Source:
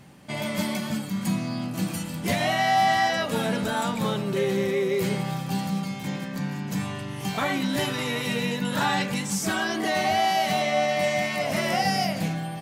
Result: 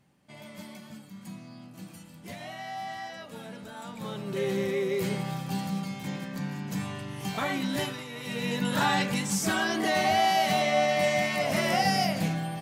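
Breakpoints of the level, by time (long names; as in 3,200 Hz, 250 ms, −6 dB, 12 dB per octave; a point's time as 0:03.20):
0:03.74 −16.5 dB
0:04.47 −4 dB
0:07.82 −4 dB
0:08.08 −13.5 dB
0:08.57 −1 dB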